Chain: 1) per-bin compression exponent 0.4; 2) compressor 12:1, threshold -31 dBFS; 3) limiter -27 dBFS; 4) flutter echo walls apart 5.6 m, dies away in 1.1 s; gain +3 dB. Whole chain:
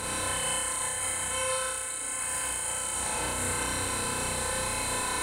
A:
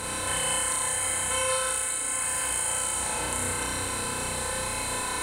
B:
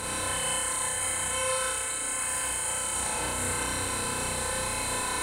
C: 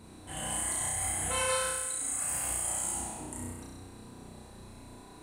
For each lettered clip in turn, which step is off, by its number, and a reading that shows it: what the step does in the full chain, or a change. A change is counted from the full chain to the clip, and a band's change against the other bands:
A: 3, mean gain reduction 2.0 dB; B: 2, mean gain reduction 4.5 dB; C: 1, 4 kHz band -3.5 dB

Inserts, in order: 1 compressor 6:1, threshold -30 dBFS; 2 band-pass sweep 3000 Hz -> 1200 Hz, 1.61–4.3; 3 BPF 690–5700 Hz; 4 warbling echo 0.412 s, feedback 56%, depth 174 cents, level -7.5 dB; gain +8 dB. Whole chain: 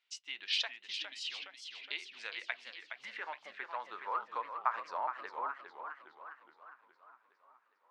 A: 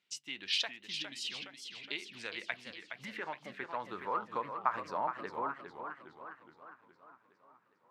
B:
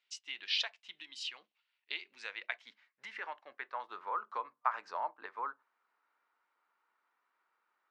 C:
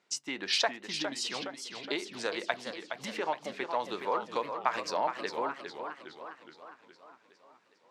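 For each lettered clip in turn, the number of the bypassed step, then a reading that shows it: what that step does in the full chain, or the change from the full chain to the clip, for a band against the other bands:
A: 3, 250 Hz band +14.0 dB; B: 4, momentary loudness spread change -2 LU; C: 2, 250 Hz band +18.5 dB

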